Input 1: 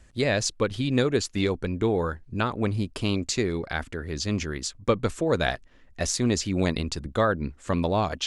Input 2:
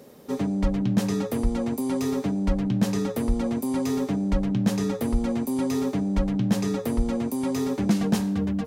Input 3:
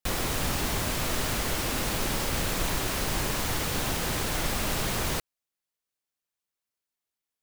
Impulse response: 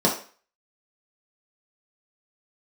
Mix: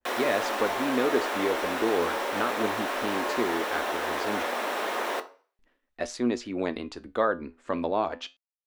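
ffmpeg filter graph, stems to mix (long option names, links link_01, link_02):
-filter_complex "[0:a]agate=range=-33dB:threshold=-42dB:ratio=3:detection=peak,equalizer=frequency=110:width_type=o:width=0.92:gain=-7,volume=-10.5dB,asplit=3[link_01][link_02][link_03];[link_01]atrim=end=4.43,asetpts=PTS-STARTPTS,afade=type=out:start_time=4.426:duration=0.004:curve=hsin[link_04];[link_02]atrim=start=4.43:end=5.59,asetpts=PTS-STARTPTS,volume=0[link_05];[link_03]atrim=start=5.59,asetpts=PTS-STARTPTS,afade=type=in:duration=0.004:curve=hsin[link_06];[link_04][link_05][link_06]concat=n=3:v=0:a=1[link_07];[2:a]highpass=530,volume=-5dB,asplit=2[link_08][link_09];[link_09]volume=-23.5dB[link_10];[3:a]atrim=start_sample=2205[link_11];[link_10][link_11]afir=irnorm=-1:irlink=0[link_12];[link_07][link_08][link_12]amix=inputs=3:normalize=0,firequalizer=gain_entry='entry(150,0);entry(250,13);entry(910,14);entry(6800,1)':delay=0.05:min_phase=1,flanger=delay=8.2:depth=4.2:regen=76:speed=0.32:shape=sinusoidal,adynamicequalizer=threshold=0.00631:dfrequency=2100:dqfactor=0.7:tfrequency=2100:tqfactor=0.7:attack=5:release=100:ratio=0.375:range=2:mode=cutabove:tftype=highshelf"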